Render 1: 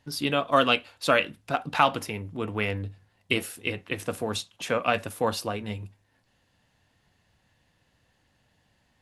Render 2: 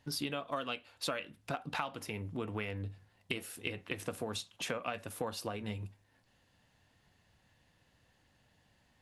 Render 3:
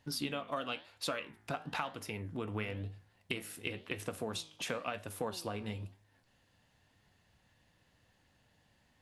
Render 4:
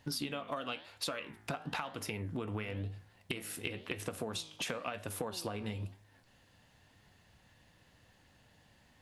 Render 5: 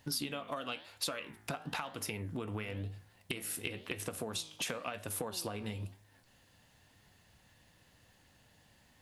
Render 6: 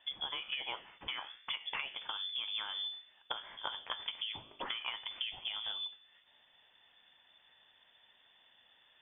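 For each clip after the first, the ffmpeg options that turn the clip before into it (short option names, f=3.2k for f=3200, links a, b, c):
-af "acompressor=threshold=-32dB:ratio=8,volume=-2dB"
-af "flanger=delay=9.4:depth=10:regen=84:speed=0.99:shape=sinusoidal,volume=4dB"
-af "acompressor=threshold=-40dB:ratio=6,volume=5.5dB"
-af "highshelf=f=6.7k:g=8,volume=-1dB"
-af "lowpass=f=3.1k:t=q:w=0.5098,lowpass=f=3.1k:t=q:w=0.6013,lowpass=f=3.1k:t=q:w=0.9,lowpass=f=3.1k:t=q:w=2.563,afreqshift=-3600"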